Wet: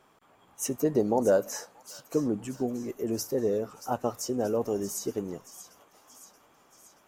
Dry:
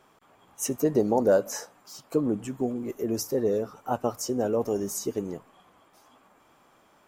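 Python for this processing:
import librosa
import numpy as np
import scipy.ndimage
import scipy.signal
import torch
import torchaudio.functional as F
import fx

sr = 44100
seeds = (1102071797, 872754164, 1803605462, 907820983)

y = fx.echo_wet_highpass(x, sr, ms=629, feedback_pct=59, hz=2000.0, wet_db=-11.5)
y = y * librosa.db_to_amplitude(-2.0)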